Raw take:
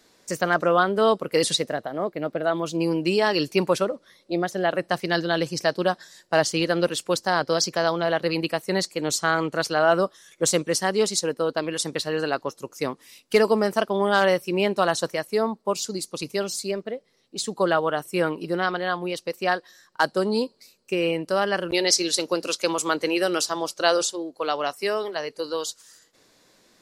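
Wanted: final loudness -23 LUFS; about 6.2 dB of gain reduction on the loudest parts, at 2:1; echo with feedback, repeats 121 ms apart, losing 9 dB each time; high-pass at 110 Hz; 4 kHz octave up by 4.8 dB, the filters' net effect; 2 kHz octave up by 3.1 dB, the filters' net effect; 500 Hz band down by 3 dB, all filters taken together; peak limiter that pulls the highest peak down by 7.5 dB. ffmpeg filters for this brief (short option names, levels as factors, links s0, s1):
-af "highpass=110,equalizer=f=500:t=o:g=-4,equalizer=f=2000:t=o:g=3.5,equalizer=f=4000:t=o:g=5,acompressor=threshold=0.0631:ratio=2,alimiter=limit=0.178:level=0:latency=1,aecho=1:1:121|242|363|484:0.355|0.124|0.0435|0.0152,volume=1.78"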